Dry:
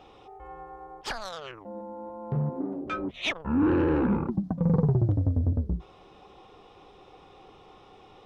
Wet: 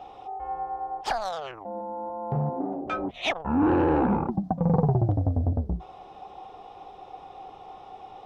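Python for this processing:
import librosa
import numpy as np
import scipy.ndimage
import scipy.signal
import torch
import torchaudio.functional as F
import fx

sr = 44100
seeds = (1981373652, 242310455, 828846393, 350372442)

y = fx.peak_eq(x, sr, hz=750.0, db=14.0, octaves=0.6)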